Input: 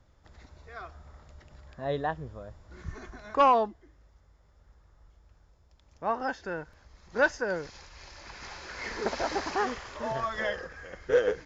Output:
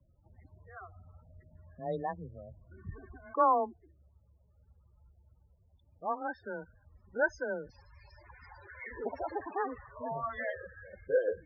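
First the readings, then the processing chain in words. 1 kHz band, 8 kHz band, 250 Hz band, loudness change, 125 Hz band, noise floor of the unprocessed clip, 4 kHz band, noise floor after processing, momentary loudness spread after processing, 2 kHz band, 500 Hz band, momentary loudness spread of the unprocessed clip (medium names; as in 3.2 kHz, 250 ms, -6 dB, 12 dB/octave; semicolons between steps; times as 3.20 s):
-4.5 dB, no reading, -5.5 dB, -5.0 dB, -5.5 dB, -62 dBFS, under -20 dB, -67 dBFS, 21 LU, -6.0 dB, -5.0 dB, 19 LU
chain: frequency shift +18 Hz; loudest bins only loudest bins 16; trim -4.5 dB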